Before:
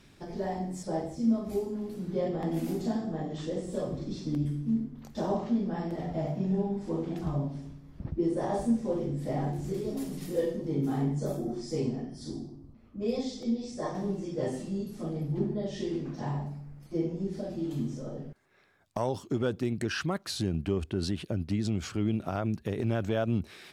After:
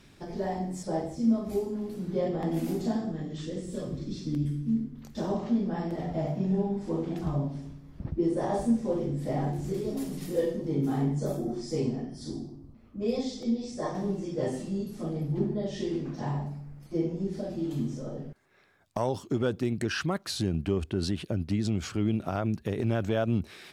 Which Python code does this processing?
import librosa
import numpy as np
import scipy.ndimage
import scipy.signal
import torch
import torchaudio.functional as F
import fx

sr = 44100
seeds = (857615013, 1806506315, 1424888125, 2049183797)

y = fx.peak_eq(x, sr, hz=760.0, db=fx.line((3.11, -13.5), (5.43, -4.5)), octaves=1.3, at=(3.11, 5.43), fade=0.02)
y = y * librosa.db_to_amplitude(1.5)